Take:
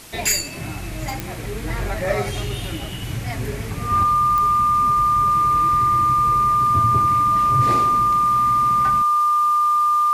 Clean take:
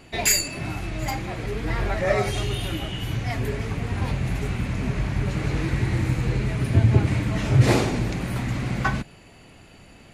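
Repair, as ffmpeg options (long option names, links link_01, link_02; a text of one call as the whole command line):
ffmpeg -i in.wav -af "adeclick=threshold=4,bandreject=frequency=1200:width=30,afwtdn=0.0089,asetnsamples=nb_out_samples=441:pad=0,asendcmd='4.03 volume volume 6.5dB',volume=0dB" out.wav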